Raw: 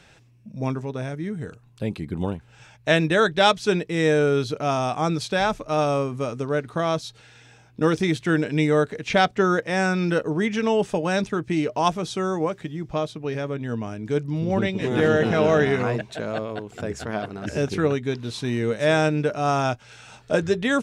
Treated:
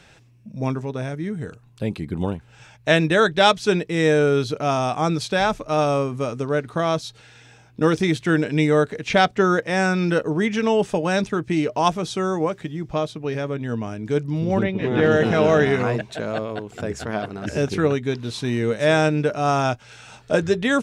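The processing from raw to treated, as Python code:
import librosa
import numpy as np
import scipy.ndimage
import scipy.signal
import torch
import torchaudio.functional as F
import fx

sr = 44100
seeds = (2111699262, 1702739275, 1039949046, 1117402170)

y = fx.lowpass(x, sr, hz=fx.line((14.62, 2100.0), (15.1, 4700.0)), slope=12, at=(14.62, 15.1), fade=0.02)
y = y * librosa.db_to_amplitude(2.0)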